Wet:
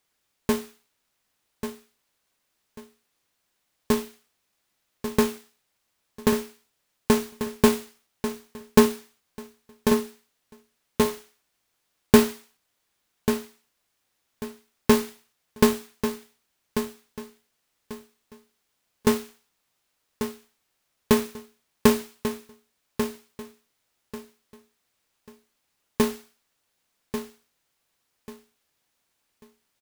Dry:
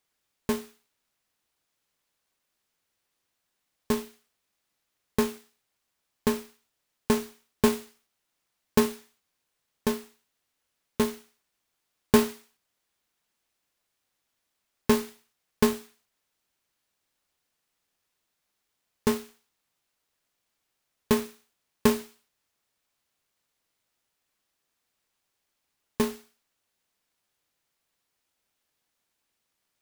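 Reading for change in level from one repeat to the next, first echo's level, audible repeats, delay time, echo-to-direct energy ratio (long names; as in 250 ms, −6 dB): −11.5 dB, −9.0 dB, 3, 1,141 ms, −8.5 dB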